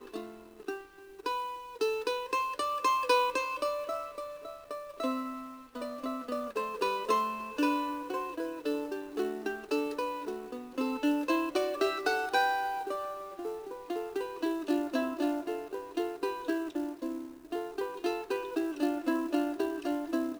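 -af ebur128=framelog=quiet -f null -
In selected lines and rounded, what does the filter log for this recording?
Integrated loudness:
  I:         -33.2 LUFS
  Threshold: -43.3 LUFS
Loudness range:
  LRA:         4.0 LU
  Threshold: -53.2 LUFS
  LRA low:   -35.4 LUFS
  LRA high:  -31.4 LUFS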